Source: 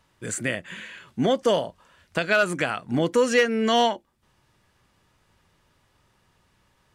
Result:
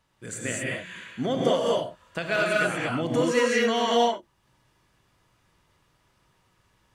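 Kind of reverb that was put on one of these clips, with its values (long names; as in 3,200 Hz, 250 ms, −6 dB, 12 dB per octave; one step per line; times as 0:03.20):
reverb whose tail is shaped and stops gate 260 ms rising, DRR −4 dB
level −6.5 dB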